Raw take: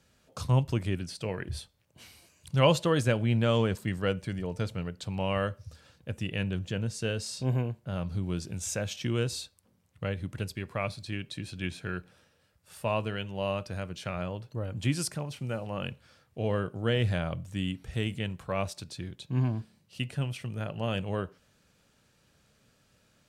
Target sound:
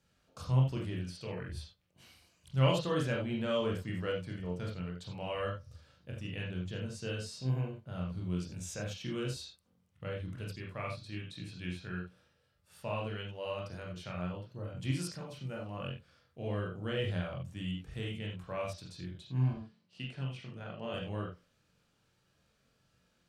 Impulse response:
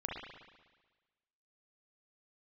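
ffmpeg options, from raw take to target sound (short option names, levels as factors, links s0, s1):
-filter_complex "[0:a]asettb=1/sr,asplit=3[s0][s1][s2];[s0]atrim=end=19.534[s3];[s1]atrim=start=19.53:end=20.94,asetpts=PTS-STARTPTS,afade=t=in:d=0.004:c=qsin,afade=t=out:st=1.406:d=0.004:c=qsin,highpass=140,lowpass=6100[s4];[s2]atrim=start=20.936[s5];[s3][s4]acrossfade=d=0.004:c1=hsin:c2=qsin[s6];[s6][s5]acrossfade=d=0.004:c1=qsin:c2=hsin[s7];[1:a]atrim=start_sample=2205,afade=t=out:st=0.21:d=0.01,atrim=end_sample=9702,asetrate=70560,aresample=44100[s8];[s7][s8]afir=irnorm=-1:irlink=0,volume=0.668"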